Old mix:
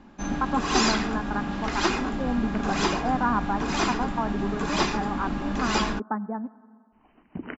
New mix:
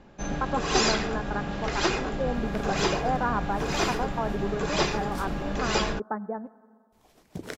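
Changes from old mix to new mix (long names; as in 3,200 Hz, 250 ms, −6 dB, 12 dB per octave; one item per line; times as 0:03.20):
second sound: remove linear-phase brick-wall low-pass 3,100 Hz
master: add octave-band graphic EQ 125/250/500/1,000 Hz +7/−10/+8/−5 dB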